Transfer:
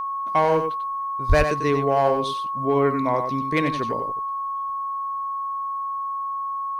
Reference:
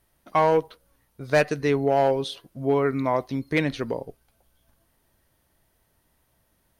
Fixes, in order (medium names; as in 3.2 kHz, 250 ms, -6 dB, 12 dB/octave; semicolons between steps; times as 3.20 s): band-stop 1.1 kHz, Q 30; de-plosive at 1.28 s; inverse comb 93 ms -7.5 dB